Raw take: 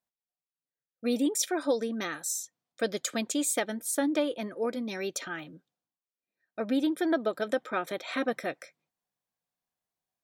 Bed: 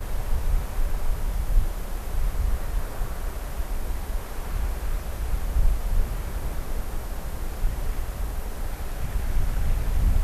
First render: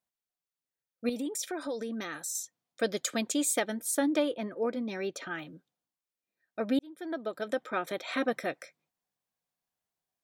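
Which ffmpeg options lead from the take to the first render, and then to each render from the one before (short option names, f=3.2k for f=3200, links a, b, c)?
-filter_complex "[0:a]asettb=1/sr,asplit=3[a][b][c];[a]atrim=end=1.094[d];[b]atrim=start=1.09:end=2.35,asetpts=PTS-STARTPTS,afade=t=in:d=0.004:c=qsin,afade=t=out:st=1.256:d=0.004:c=qsin,acompressor=threshold=-33dB:ratio=3:attack=3.2:release=140:knee=1:detection=peak[e];[c]atrim=start=2.346[f];[d][e]acrossfade=d=0.004:c1=hsin:c2=qsin[g];[g][f]acrossfade=d=0.004:c1=qsin:c2=hsin,asettb=1/sr,asplit=3[h][i][j];[h]atrim=end=4.314[k];[i]atrim=start=4.31:end=5.31,asetpts=PTS-STARTPTS,afade=t=in:d=0.004:c=qsin,afade=t=out:st=0.996:d=0.004:c=qsin,lowpass=f=2.5k:p=1[l];[j]atrim=start=5.306[m];[k][l]acrossfade=d=0.004:c1=hsin:c2=qsin[n];[n][m]acrossfade=d=0.004:c1=qsin:c2=hsin,asplit=2[o][p];[o]atrim=end=6.79,asetpts=PTS-STARTPTS,afade=t=out:st=6.786:d=0.004:c=hsin[q];[p]atrim=start=6.79,asetpts=PTS-STARTPTS,afade=t=in:d=1.45:c=qsin[r];[q][r]concat=n=2:v=0:a=1"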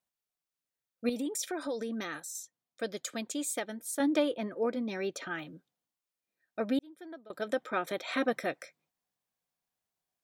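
-filter_complex "[0:a]asplit=4[a][b][c][d];[a]atrim=end=2.202[e];[b]atrim=start=2.198:end=4.002,asetpts=PTS-STARTPTS,volume=-6dB[f];[c]atrim=start=3.998:end=7.3,asetpts=PTS-STARTPTS,afade=t=out:st=2.592:d=0.71:silence=0.0794328[g];[d]atrim=start=7.3,asetpts=PTS-STARTPTS,afade=t=in:d=0.004:c=hsin:silence=0.0794328[h];[e][f]acrossfade=d=0.004:c1=hsin:c2=hsin[i];[g][h]concat=n=2:v=0:a=1[j];[i][j]acrossfade=d=0.004:c1=hsin:c2=hsin"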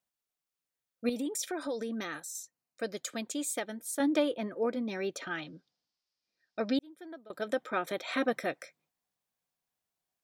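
-filter_complex "[0:a]asettb=1/sr,asplit=3[a][b][c];[a]atrim=end=2.434[d];[b]atrim=start=2.43:end=2.95,asetpts=PTS-STARTPTS,afade=t=in:d=0.004:c=qsin,afade=t=out:st=0.516:d=0.004:c=qsin,asuperstop=centerf=3400:order=4:qfactor=5.6[e];[c]atrim=start=2.946[f];[d][e]acrossfade=d=0.004:c1=hsin:c2=qsin[g];[g][f]acrossfade=d=0.004:c1=qsin:c2=hsin,asettb=1/sr,asplit=3[h][i][j];[h]atrim=end=5.274[k];[i]atrim=start=5.27:end=6.78,asetpts=PTS-STARTPTS,afade=t=in:d=0.004:c=qsin,afade=t=out:st=1.506:d=0.004:c=qsin,lowpass=f=5k:t=q:w=4.9[l];[j]atrim=start=6.776[m];[k][l]acrossfade=d=0.004:c1=hsin:c2=qsin[n];[n][m]acrossfade=d=0.004:c1=qsin:c2=hsin"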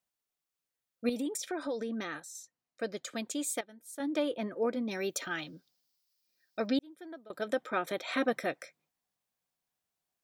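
-filter_complex "[0:a]asettb=1/sr,asplit=3[a][b][c];[a]atrim=end=1.374[d];[b]atrim=start=1.37:end=3.11,asetpts=PTS-STARTPTS,afade=t=in:d=0.004:c=qsin,afade=t=out:st=1.736:d=0.004:c=qsin,highshelf=f=8k:g=-11.5[e];[c]atrim=start=3.106[f];[d][e]acrossfade=d=0.004:c1=hsin:c2=qsin[g];[g][f]acrossfade=d=0.004:c1=qsin:c2=hsin,asettb=1/sr,asplit=3[h][i][j];[h]atrim=end=4.914[k];[i]atrim=start=4.91:end=6.67,asetpts=PTS-STARTPTS,afade=t=in:d=0.004:c=qsin,afade=t=out:st=1.756:d=0.004:c=qsin,aemphasis=mode=production:type=50fm[l];[j]atrim=start=6.666[m];[k][l]acrossfade=d=0.004:c1=hsin:c2=qsin[n];[n][m]acrossfade=d=0.004:c1=qsin:c2=hsin,asplit=2[o][p];[o]atrim=end=3.61,asetpts=PTS-STARTPTS,afade=t=out:st=3.606:d=0.004:c=hsin:silence=0.199526[q];[p]atrim=start=3.61,asetpts=PTS-STARTPTS,afade=t=in:d=0.76:c=qua:silence=0.199526[r];[q][r]concat=n=2:v=0:a=1"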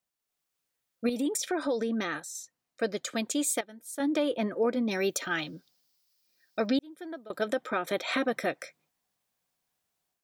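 -af "alimiter=limit=-23.5dB:level=0:latency=1:release=192,dynaudnorm=f=190:g=3:m=6dB"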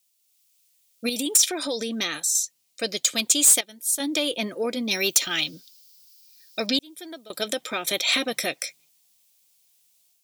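-af "aexciter=amount=7:drive=2.8:freq=2.3k,asoftclip=type=tanh:threshold=-9.5dB"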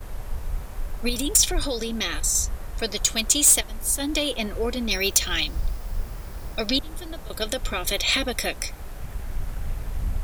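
-filter_complex "[1:a]volume=-5.5dB[a];[0:a][a]amix=inputs=2:normalize=0"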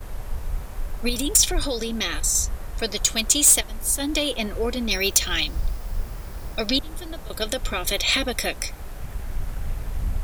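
-af "volume=1dB"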